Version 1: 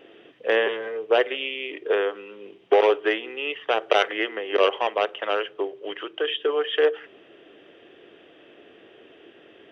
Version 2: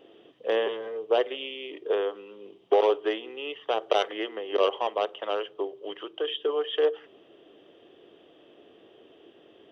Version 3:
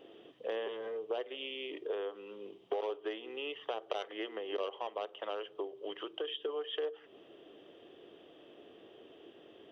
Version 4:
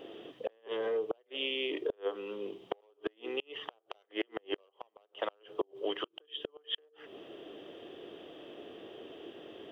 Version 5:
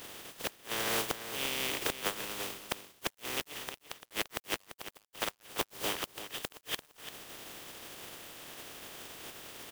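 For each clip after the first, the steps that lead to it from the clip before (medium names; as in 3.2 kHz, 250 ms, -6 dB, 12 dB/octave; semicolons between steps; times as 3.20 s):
high-order bell 1.9 kHz -8 dB 1.1 oct; trim -3.5 dB
compression 3:1, threshold -36 dBFS, peak gain reduction 14 dB; trim -1.5 dB
inverted gate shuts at -29 dBFS, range -36 dB; trim +7.5 dB
spectral contrast reduction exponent 0.24; companded quantiser 4-bit; delay 342 ms -11 dB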